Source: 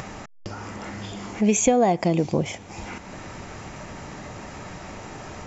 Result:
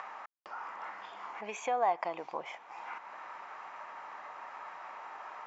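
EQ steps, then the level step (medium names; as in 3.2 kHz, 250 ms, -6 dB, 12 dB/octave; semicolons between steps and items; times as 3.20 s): ladder band-pass 1.2 kHz, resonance 45%; +6.0 dB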